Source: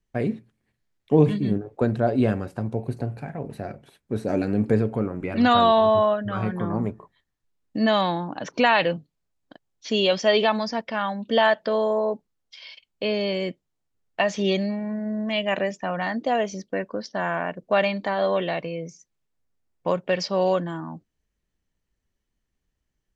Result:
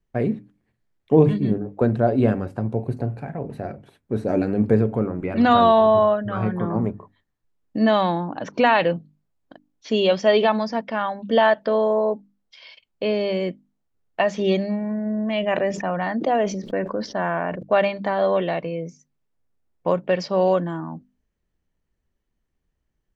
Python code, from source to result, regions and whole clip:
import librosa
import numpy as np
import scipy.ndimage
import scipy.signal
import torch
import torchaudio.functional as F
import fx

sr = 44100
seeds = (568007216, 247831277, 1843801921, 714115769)

y = fx.chain(x, sr, fx.high_shelf(hz=5200.0, db=-6.5),
    fx.sustainer(db_per_s=66.0), at=(15.15, 17.63))
y = fx.high_shelf(y, sr, hz=2300.0, db=-9.5)
y = fx.hum_notches(y, sr, base_hz=50, count=6)
y = F.gain(torch.from_numpy(y), 3.5).numpy()